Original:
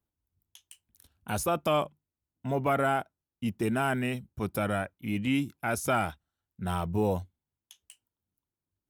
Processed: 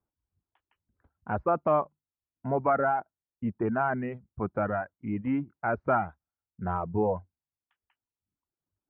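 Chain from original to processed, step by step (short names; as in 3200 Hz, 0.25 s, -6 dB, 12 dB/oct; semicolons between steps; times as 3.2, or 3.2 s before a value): Bessel low-pass 940 Hz, order 6; reverb removal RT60 1 s; tilt shelf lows -6 dB, about 730 Hz; gain +5.5 dB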